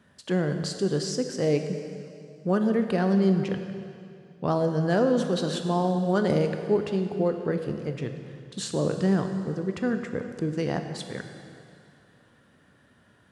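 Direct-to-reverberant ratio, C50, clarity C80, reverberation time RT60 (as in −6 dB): 6.0 dB, 7.0 dB, 8.0 dB, 2.5 s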